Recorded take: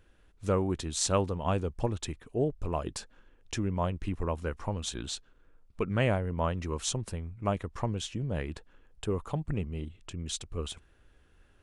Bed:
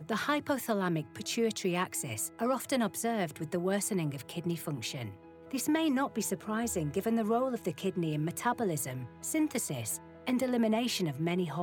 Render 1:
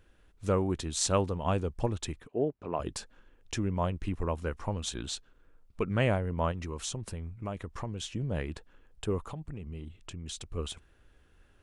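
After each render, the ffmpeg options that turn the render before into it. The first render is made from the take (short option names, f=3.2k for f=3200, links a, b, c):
-filter_complex "[0:a]asettb=1/sr,asplit=3[a][b][c];[a]atrim=end=2.274[d];[b]atrim=start=2.27:end=2.8,asetpts=PTS-STARTPTS,afade=t=in:d=0.004:c=qsin,afade=t=out:st=0.526:d=0.004:c=qsin,highpass=190,lowpass=2.7k[e];[c]atrim=start=2.796[f];[d][e]acrossfade=d=0.004:c1=hsin:c2=qsin[g];[g][f]acrossfade=d=0.004:c1=qsin:c2=hsin,asettb=1/sr,asplit=3[h][i][j];[h]atrim=end=6.514[k];[i]atrim=start=6.51:end=8.08,asetpts=PTS-STARTPTS,afade=t=in:d=0.004:c=qsin,afade=t=out:st=1.566:d=0.004:c=qsin,acompressor=threshold=-33dB:ratio=3:attack=3.2:release=140:knee=1:detection=peak[l];[j]atrim=start=8.076[m];[k][l]acrossfade=d=0.004:c1=hsin:c2=qsin[n];[n][m]acrossfade=d=0.004:c1=qsin:c2=hsin,asettb=1/sr,asplit=3[o][p][q];[o]atrim=end=9.204[r];[p]atrim=start=9.2:end=10.38,asetpts=PTS-STARTPTS,afade=t=in:d=0.004:c=qsin,afade=t=out:st=1.176:d=0.004:c=qsin,acompressor=threshold=-36dB:ratio=6:attack=3.2:release=140:knee=1:detection=peak[s];[q]atrim=start=10.376[t];[r][s]acrossfade=d=0.004:c1=hsin:c2=qsin[u];[u][t]acrossfade=d=0.004:c1=qsin:c2=hsin"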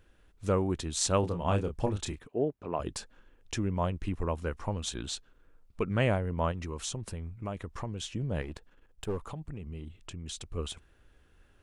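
-filter_complex "[0:a]asettb=1/sr,asplit=3[a][b][c];[a]atrim=end=1.204[d];[b]atrim=start=1.2:end=2.22,asetpts=PTS-STARTPTS,afade=t=in:d=0.004:c=qsin,afade=t=out:st=1.016:d=0.004:c=qsin,asplit=2[e][f];[f]adelay=29,volume=-6.5dB[g];[e][g]amix=inputs=2:normalize=0,atrim=end_sample=44982[h];[c]atrim=start=2.216[i];[d][h]acrossfade=d=0.004:c1=hsin:c2=qsin[j];[j][i]acrossfade=d=0.004:c1=qsin:c2=hsin,asettb=1/sr,asplit=3[k][l][m];[k]atrim=end=8.424[n];[l]atrim=start=8.42:end=9.23,asetpts=PTS-STARTPTS,afade=t=in:d=0.004:c=qsin,afade=t=out:st=0.806:d=0.004:c=qsin,aeval=exprs='if(lt(val(0),0),0.447*val(0),val(0))':c=same[o];[m]atrim=start=9.226[p];[n][o]acrossfade=d=0.004:c1=hsin:c2=qsin[q];[q][p]acrossfade=d=0.004:c1=qsin:c2=hsin"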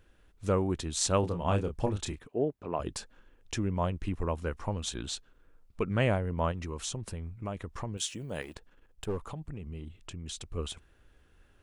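-filter_complex "[0:a]asettb=1/sr,asplit=3[a][b][c];[a]atrim=end=7.974[d];[b]atrim=start=7.97:end=8.55,asetpts=PTS-STARTPTS,afade=t=in:d=0.004:c=qsin,afade=t=out:st=0.576:d=0.004:c=qsin,aemphasis=mode=production:type=bsi[e];[c]atrim=start=8.546[f];[d][e]acrossfade=d=0.004:c1=hsin:c2=qsin[g];[g][f]acrossfade=d=0.004:c1=qsin:c2=hsin"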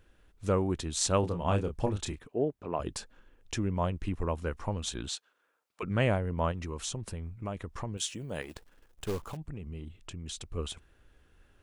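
-filter_complex "[0:a]asplit=3[a][b][c];[a]afade=t=out:st=5.08:d=0.02[d];[b]highpass=680,afade=t=in:st=5.08:d=0.02,afade=t=out:st=5.82:d=0.02[e];[c]afade=t=in:st=5.82:d=0.02[f];[d][e][f]amix=inputs=3:normalize=0,asettb=1/sr,asplit=3[g][h][i];[g]atrim=end=8.494[j];[h]atrim=start=8.49:end=9.37,asetpts=PTS-STARTPTS,afade=t=in:d=0.004:c=qsin,afade=t=out:st=0.876:d=0.004:c=qsin,acrusher=bits=3:mode=log:mix=0:aa=0.000001[k];[i]atrim=start=9.366[l];[j][k]acrossfade=d=0.004:c1=hsin:c2=qsin[m];[m][l]acrossfade=d=0.004:c1=qsin:c2=hsin"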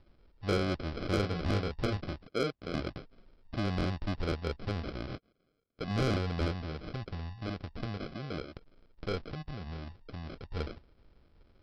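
-af "aresample=11025,acrusher=samples=12:mix=1:aa=0.000001,aresample=44100,asoftclip=type=tanh:threshold=-22dB"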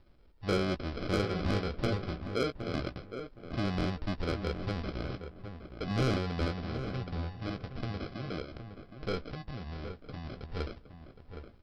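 -filter_complex "[0:a]asplit=2[a][b];[b]adelay=16,volume=-11dB[c];[a][c]amix=inputs=2:normalize=0,asplit=2[d][e];[e]adelay=766,lowpass=f=2.1k:p=1,volume=-9dB,asplit=2[f][g];[g]adelay=766,lowpass=f=2.1k:p=1,volume=0.22,asplit=2[h][i];[i]adelay=766,lowpass=f=2.1k:p=1,volume=0.22[j];[d][f][h][j]amix=inputs=4:normalize=0"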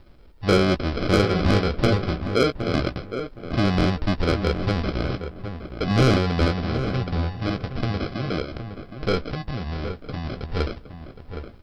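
-af "volume=11.5dB"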